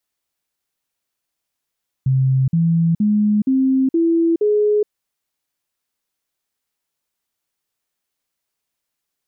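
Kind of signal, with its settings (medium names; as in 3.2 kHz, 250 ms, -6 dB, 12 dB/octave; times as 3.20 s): stepped sine 132 Hz up, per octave 3, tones 6, 0.42 s, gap 0.05 s -12.5 dBFS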